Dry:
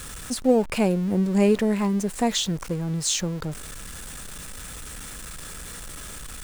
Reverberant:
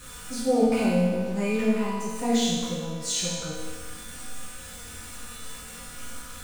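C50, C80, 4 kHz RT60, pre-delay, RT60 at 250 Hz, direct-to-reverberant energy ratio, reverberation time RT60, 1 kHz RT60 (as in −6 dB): −1.5 dB, 1.0 dB, 1.4 s, 4 ms, 1.5 s, −11.0 dB, 1.5 s, 1.5 s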